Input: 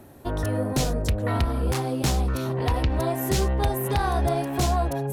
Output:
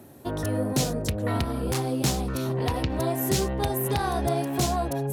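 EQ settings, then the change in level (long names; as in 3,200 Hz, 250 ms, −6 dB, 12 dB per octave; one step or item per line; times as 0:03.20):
high-pass filter 110 Hz 12 dB per octave
tilt shelving filter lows +4.5 dB, about 760 Hz
high-shelf EQ 2,200 Hz +10 dB
−3.0 dB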